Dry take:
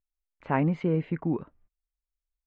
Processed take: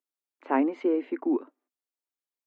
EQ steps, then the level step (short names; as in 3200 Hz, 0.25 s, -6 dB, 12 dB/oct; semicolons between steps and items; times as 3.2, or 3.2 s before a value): rippled Chebyshev high-pass 250 Hz, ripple 3 dB; tilt shelf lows +7 dB, about 900 Hz; high shelf 2000 Hz +9.5 dB; 0.0 dB